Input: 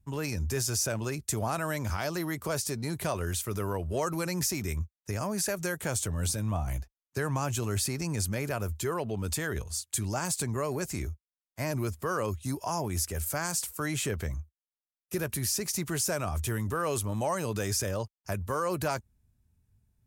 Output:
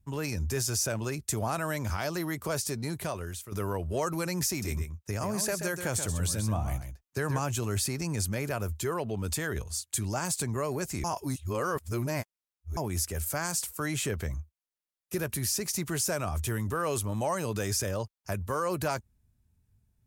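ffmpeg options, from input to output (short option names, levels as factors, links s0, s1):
-filter_complex "[0:a]asettb=1/sr,asplit=3[s0][s1][s2];[s0]atrim=end=4.494[s3];[s1]atrim=start=4.49:end=7.39,asetpts=PTS-STARTPTS,afade=t=in:d=0.004:c=qsin,afade=t=out:st=2.896:d=0.004:c=qsin,aecho=1:1:131:0.398,atrim=end_sample=127890[s4];[s2]atrim=start=7.386[s5];[s3][s4]acrossfade=d=0.004:c1=hsin:c2=qsin[s6];[s6][s5]acrossfade=d=0.004:c1=qsin:c2=hsin,asplit=4[s7][s8][s9][s10];[s7]atrim=end=3.52,asetpts=PTS-STARTPTS,afade=t=out:st=2.83:d=0.69:silence=0.251189[s11];[s8]atrim=start=3.52:end=11.042,asetpts=PTS-STARTPTS,afade=t=in:d=0.004:c=hsin:silence=0.251189[s12];[s9]atrim=start=11.038:end=12.772,asetpts=PTS-STARTPTS,areverse[s13];[s10]atrim=start=12.768[s14];[s11][s12]concat=n=2:v=0:a=1[s15];[s15][s13]acrossfade=d=0.004:c1=hsin:c2=hsin[s16];[s16][s14]acrossfade=d=0.004:c1=hsin:c2=hsin"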